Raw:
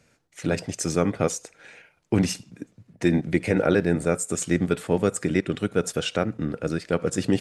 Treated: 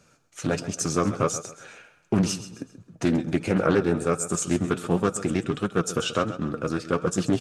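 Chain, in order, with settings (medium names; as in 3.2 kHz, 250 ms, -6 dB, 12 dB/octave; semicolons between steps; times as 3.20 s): graphic EQ with 31 bands 1.25 kHz +9 dB, 2 kHz -9 dB, 6.3 kHz +4 dB; in parallel at -2 dB: compression, threshold -29 dBFS, peak gain reduction 13.5 dB; on the sum: flange 1.4 Hz, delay 4.8 ms, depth 4.7 ms, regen +50%; feedback delay 132 ms, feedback 34%, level -13.5 dB; loudspeaker Doppler distortion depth 0.35 ms; trim +1 dB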